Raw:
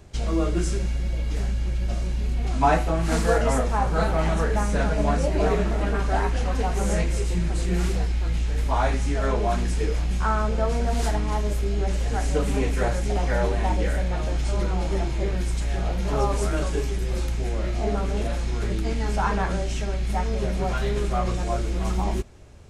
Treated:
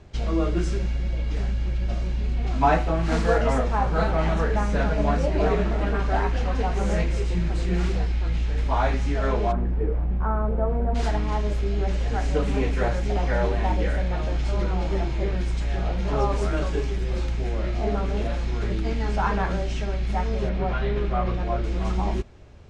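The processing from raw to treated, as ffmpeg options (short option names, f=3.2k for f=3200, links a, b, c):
-filter_complex "[0:a]asplit=3[a][b][c];[a]afade=t=out:st=9.51:d=0.02[d];[b]lowpass=1k,afade=t=in:st=9.51:d=0.02,afade=t=out:st=10.94:d=0.02[e];[c]afade=t=in:st=10.94:d=0.02[f];[d][e][f]amix=inputs=3:normalize=0,asettb=1/sr,asplit=3[g][h][i];[g]atrim=end=20.494[j];[h]atrim=start=20.49:end=21.64,asetpts=PTS-STARTPTS,afade=t=in:d=0.004:c=qsin,afade=t=out:st=1.146:d=0.004:c=qsin,lowpass=3.5k[k];[i]atrim=start=21.636[l];[j][k]acrossfade=d=0.004:c1=hsin:c2=qsin[m];[m][l]acrossfade=d=0.004:c1=qsin:c2=hsin,lowpass=4.7k"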